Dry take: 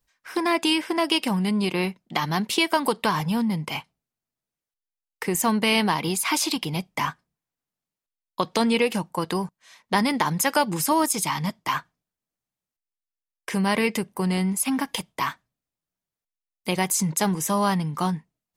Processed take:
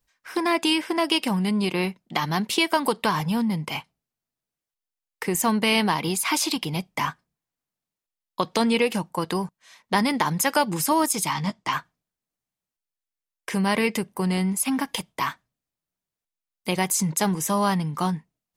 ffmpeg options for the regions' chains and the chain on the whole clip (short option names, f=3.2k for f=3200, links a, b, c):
-filter_complex "[0:a]asettb=1/sr,asplit=3[a][b][c];[a]atrim=end=11.334[d];[b]atrim=start=11.33:end=11.73,asetpts=PTS-STARTPTS,afade=t=in:d=0.004:c=qsin,afade=t=out:st=0.396:d=0.004:c=qsin,lowpass=f=8.9k:w=0.5412,lowpass=f=8.9k:w=1.3066,asplit=2[e][f];[f]adelay=15,volume=-11dB[g];[e][g]amix=inputs=2:normalize=0,atrim=end_sample=17640[h];[c]atrim=start=11.726[i];[d][h]acrossfade=d=0.004:c1=hsin:c2=qsin[j];[j][i]acrossfade=d=0.004:c1=qsin:c2=hsin"